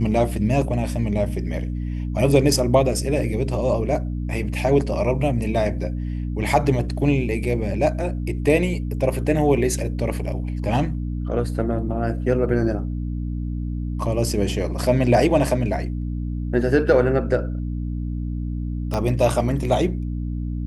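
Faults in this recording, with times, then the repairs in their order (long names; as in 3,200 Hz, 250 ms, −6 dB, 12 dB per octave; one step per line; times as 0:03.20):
mains hum 60 Hz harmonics 5 −26 dBFS
0:18.94: click −12 dBFS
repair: click removal
hum removal 60 Hz, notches 5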